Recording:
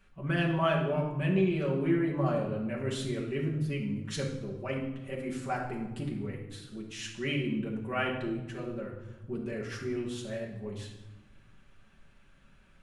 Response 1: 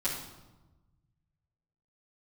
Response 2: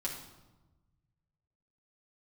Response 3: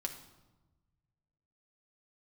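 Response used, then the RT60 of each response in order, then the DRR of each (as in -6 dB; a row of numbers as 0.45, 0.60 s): 2; 1.1, 1.1, 1.1 s; -10.5, -3.5, 3.5 dB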